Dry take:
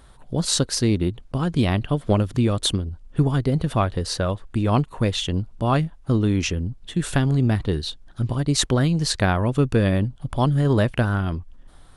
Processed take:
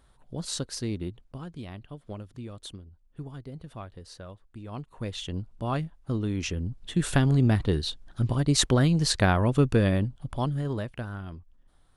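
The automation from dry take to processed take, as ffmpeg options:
ffmpeg -i in.wav -af "volume=6.5dB,afade=type=out:start_time=1.09:duration=0.5:silence=0.375837,afade=type=in:start_time=4.71:duration=0.66:silence=0.281838,afade=type=in:start_time=6.36:duration=0.57:silence=0.446684,afade=type=out:start_time=9.59:duration=1.27:silence=0.237137" out.wav

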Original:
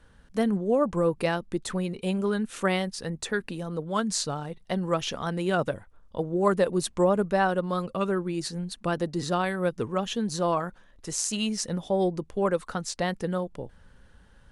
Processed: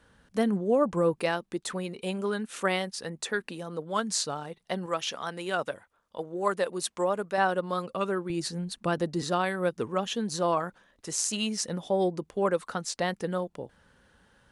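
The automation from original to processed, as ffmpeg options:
ffmpeg -i in.wav -af "asetnsamples=nb_out_samples=441:pad=0,asendcmd='1.16 highpass f 350;4.86 highpass f 760;7.38 highpass f 330;8.3 highpass f 83;9.22 highpass f 210',highpass=frequency=130:poles=1" out.wav

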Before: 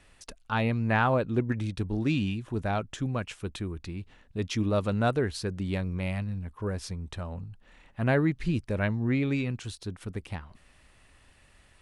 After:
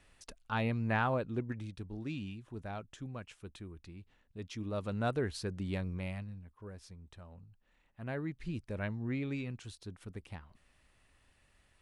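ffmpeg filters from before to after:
ffmpeg -i in.wav -af "volume=7.5dB,afade=type=out:start_time=0.86:duration=0.94:silence=0.446684,afade=type=in:start_time=4.6:duration=0.65:silence=0.446684,afade=type=out:start_time=5.87:duration=0.61:silence=0.316228,afade=type=in:start_time=8.01:duration=0.75:silence=0.473151" out.wav

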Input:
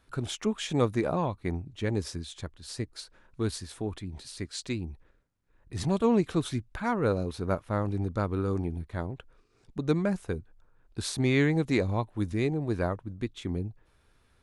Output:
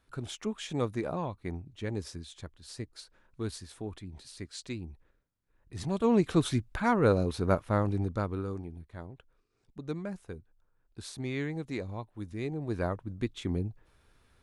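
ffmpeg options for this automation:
ffmpeg -i in.wav -af "volume=13dB,afade=type=in:start_time=5.89:duration=0.5:silence=0.398107,afade=type=out:start_time=7.65:duration=0.98:silence=0.237137,afade=type=in:start_time=12.3:duration=0.92:silence=0.298538" out.wav

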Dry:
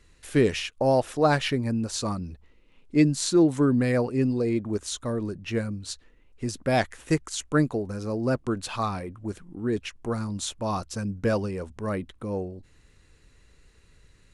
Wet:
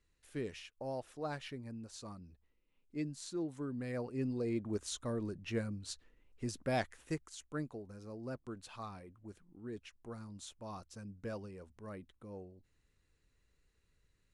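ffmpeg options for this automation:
ffmpeg -i in.wav -af "volume=-9dB,afade=type=in:start_time=3.73:duration=1.02:silence=0.298538,afade=type=out:start_time=6.47:duration=0.88:silence=0.354813" out.wav

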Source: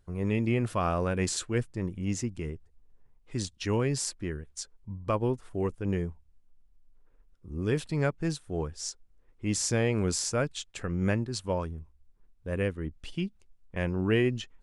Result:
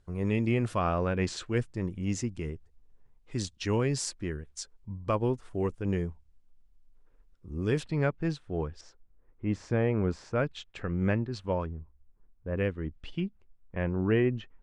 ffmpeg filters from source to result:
ffmpeg -i in.wav -af "asetnsamples=nb_out_samples=441:pad=0,asendcmd='0.79 lowpass f 4200;1.46 lowpass f 8500;7.83 lowpass f 3600;8.81 lowpass f 1700;10.36 lowpass f 3100;11.66 lowpass f 1600;12.58 lowpass f 3600;13.2 lowpass f 2000',lowpass=9200" out.wav

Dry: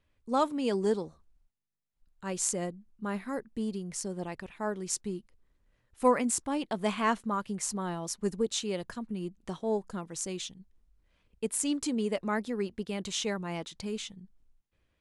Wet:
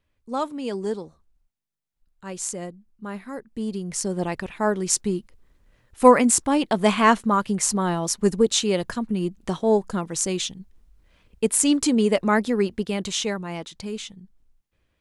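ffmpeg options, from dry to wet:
ffmpeg -i in.wav -af "volume=11dB,afade=type=in:start_time=3.43:duration=0.81:silence=0.298538,afade=type=out:start_time=12.55:duration=0.92:silence=0.446684" out.wav

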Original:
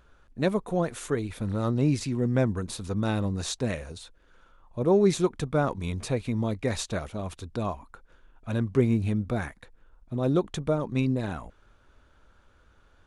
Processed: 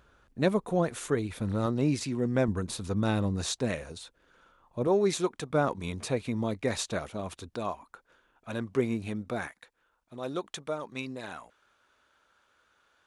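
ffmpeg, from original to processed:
ffmpeg -i in.wav -af "asetnsamples=nb_out_samples=441:pad=0,asendcmd='1.66 highpass f 210;2.48 highpass f 55;3.46 highpass f 140;4.87 highpass f 460;5.5 highpass f 190;7.49 highpass f 420;9.47 highpass f 1100',highpass=frequency=72:poles=1" out.wav

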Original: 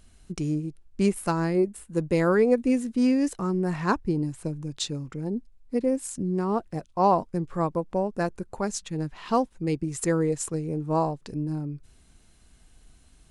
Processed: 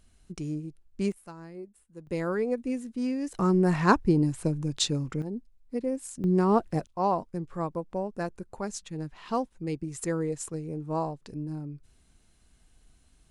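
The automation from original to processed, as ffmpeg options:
ffmpeg -i in.wav -af "asetnsamples=nb_out_samples=441:pad=0,asendcmd='1.12 volume volume -19dB;2.07 volume volume -8dB;3.34 volume volume 3.5dB;5.22 volume volume -5.5dB;6.24 volume volume 3.5dB;6.87 volume volume -5.5dB',volume=-6dB" out.wav

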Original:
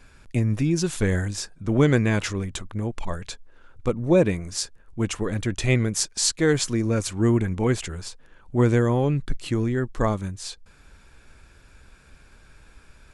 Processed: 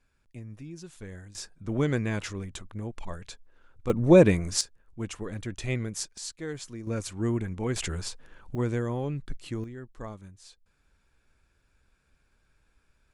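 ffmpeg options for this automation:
ffmpeg -i in.wav -af "asetnsamples=nb_out_samples=441:pad=0,asendcmd='1.35 volume volume -8dB;3.9 volume volume 2dB;4.61 volume volume -9.5dB;6.18 volume volume -16dB;6.87 volume volume -8dB;7.76 volume volume 0.5dB;8.55 volume volume -9.5dB;9.64 volume volume -17dB',volume=-20dB" out.wav

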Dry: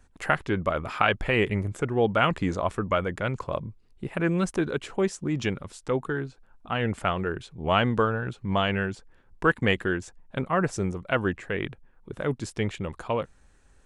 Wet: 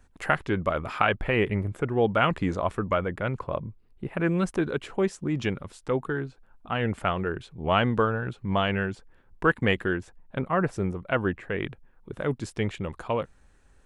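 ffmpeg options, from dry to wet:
ffmpeg -i in.wav -af "asetnsamples=nb_out_samples=441:pad=0,asendcmd='1.04 equalizer g -12;1.88 equalizer g -5.5;2.93 equalizer g -14;4.2 equalizer g -5.5;9.93 equalizer g -12;11.59 equalizer g -3.5',equalizer=frequency=6700:width_type=o:width=1.4:gain=-2.5" out.wav

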